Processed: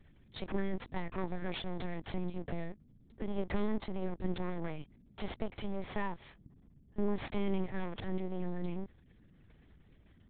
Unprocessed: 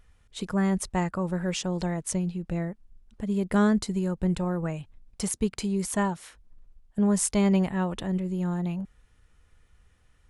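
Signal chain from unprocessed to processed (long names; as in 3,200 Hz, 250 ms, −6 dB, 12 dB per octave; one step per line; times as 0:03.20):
downward compressor 2 to 1, threshold −27 dBFS, peak gain reduction 5.5 dB
half-wave rectification
mains hum 60 Hz, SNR 24 dB
notch comb filter 1,400 Hz
0:05.38–0:07.39: high-frequency loss of the air 130 metres
linear-prediction vocoder at 8 kHz pitch kept
level +2.5 dB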